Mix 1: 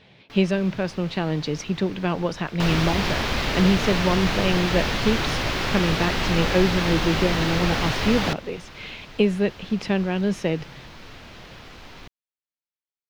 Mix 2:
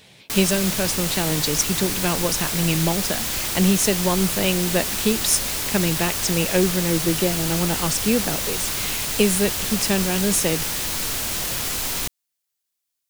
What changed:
first sound +10.5 dB; second sound: muted; master: remove air absorption 260 m

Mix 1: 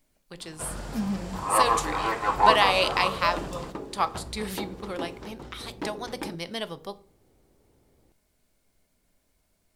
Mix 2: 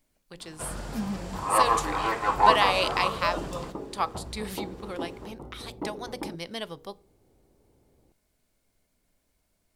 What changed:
speech: send -9.5 dB; second sound: add polynomial smoothing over 65 samples

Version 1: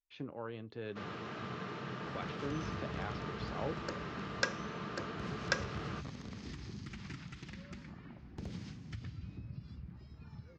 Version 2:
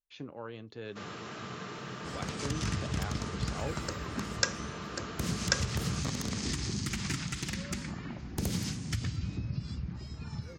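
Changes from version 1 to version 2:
second sound +10.5 dB; master: remove air absorption 180 m

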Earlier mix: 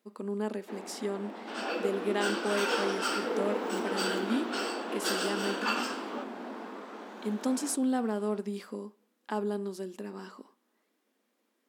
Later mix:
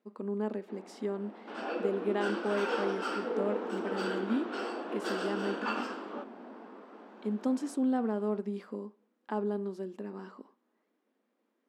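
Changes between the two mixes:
first sound -6.5 dB; master: add LPF 1300 Hz 6 dB/oct

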